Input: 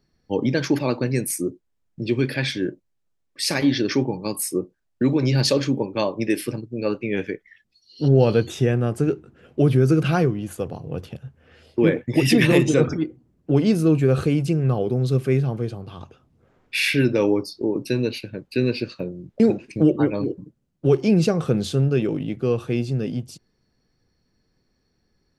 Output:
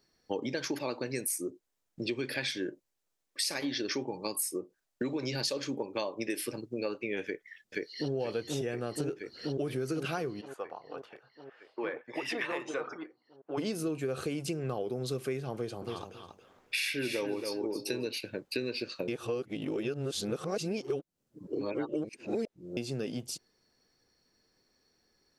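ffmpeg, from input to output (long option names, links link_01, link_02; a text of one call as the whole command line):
ffmpeg -i in.wav -filter_complex "[0:a]asplit=2[link_01][link_02];[link_02]afade=type=in:start_time=7.24:duration=0.01,afade=type=out:start_time=8.13:duration=0.01,aecho=0:1:480|960|1440|1920|2400|2880|3360|3840|4320|4800|5280|5760:1|0.8|0.64|0.512|0.4096|0.32768|0.262144|0.209715|0.167772|0.134218|0.107374|0.0858993[link_03];[link_01][link_03]amix=inputs=2:normalize=0,asplit=3[link_04][link_05][link_06];[link_04]afade=type=out:start_time=10.4:duration=0.02[link_07];[link_05]bandpass=frequency=1100:width_type=q:width=1.7,afade=type=in:start_time=10.4:duration=0.02,afade=type=out:start_time=13.57:duration=0.02[link_08];[link_06]afade=type=in:start_time=13.57:duration=0.02[link_09];[link_07][link_08][link_09]amix=inputs=3:normalize=0,asettb=1/sr,asplit=3[link_10][link_11][link_12];[link_10]atrim=end=15.544[link_13];[link_11]atrim=start=15.54:end=18.17,asetpts=PTS-STARTPTS,afade=type=in:duration=0.004:curve=qsin,afade=type=out:start_time=2.626:duration=0.004:curve=qsin,aecho=1:1:276|552:0.398|0.0597,atrim=end_sample=115983[link_14];[link_12]atrim=start=18.166[link_15];[link_13][link_14]acrossfade=duration=0.004:curve1=hsin:curve2=qsin[link_16];[link_16][link_15]acrossfade=duration=0.004:curve1=qsin:curve2=hsin,asplit=3[link_17][link_18][link_19];[link_17]atrim=end=19.082[link_20];[link_18]atrim=start=19.078:end=22.772,asetpts=PTS-STARTPTS,areverse[link_21];[link_19]atrim=start=22.768[link_22];[link_20][link_21]acrossfade=duration=0.004:curve1=hsin:curve2=hsin[link_23];[link_23][link_22]acrossfade=duration=0.004:curve1=hsin:curve2=hsin,bass=frequency=250:gain=-13,treble=frequency=4000:gain=5,acompressor=threshold=-31dB:ratio=6" out.wav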